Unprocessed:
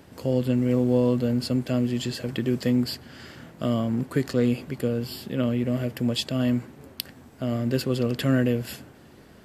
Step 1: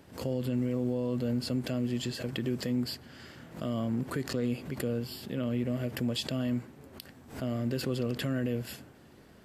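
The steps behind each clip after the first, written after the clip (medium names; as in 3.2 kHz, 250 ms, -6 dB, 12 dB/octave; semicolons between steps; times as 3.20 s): peak limiter -17 dBFS, peak gain reduction 9.5 dB; swell ahead of each attack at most 130 dB/s; trim -5.5 dB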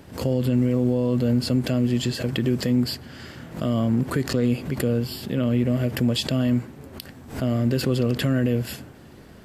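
bass shelf 150 Hz +5 dB; trim +8 dB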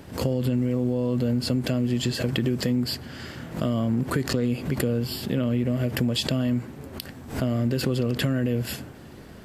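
compression, threshold -22 dBFS, peak gain reduction 6.5 dB; trim +2 dB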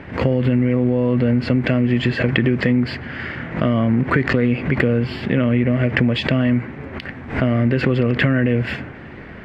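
resonant low-pass 2.1 kHz, resonance Q 3; trim +7 dB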